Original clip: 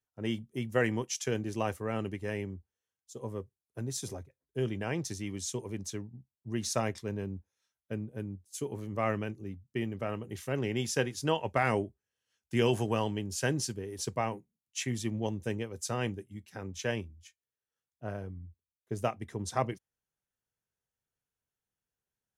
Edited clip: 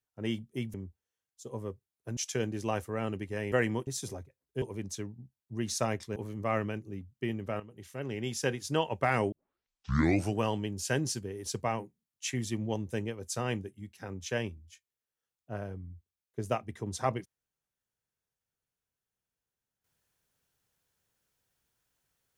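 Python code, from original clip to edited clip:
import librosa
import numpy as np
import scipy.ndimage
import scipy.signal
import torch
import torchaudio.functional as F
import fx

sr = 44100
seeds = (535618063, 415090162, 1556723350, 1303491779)

y = fx.edit(x, sr, fx.swap(start_s=0.74, length_s=0.35, other_s=2.44, other_length_s=1.43),
    fx.cut(start_s=4.62, length_s=0.95),
    fx.cut(start_s=7.11, length_s=1.58),
    fx.fade_in_from(start_s=10.13, length_s=1.04, floor_db=-12.5),
    fx.tape_start(start_s=11.85, length_s=1.06), tone=tone)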